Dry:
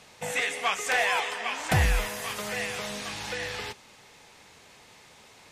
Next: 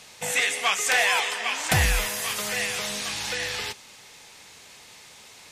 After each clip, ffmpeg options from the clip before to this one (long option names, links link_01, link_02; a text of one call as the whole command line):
ffmpeg -i in.wav -af "highshelf=frequency=2300:gain=9.5" out.wav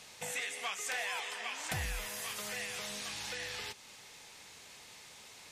ffmpeg -i in.wav -af "acompressor=threshold=-37dB:ratio=2,volume=-5.5dB" out.wav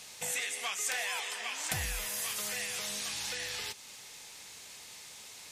ffmpeg -i in.wav -af "highshelf=frequency=4100:gain=8.5" out.wav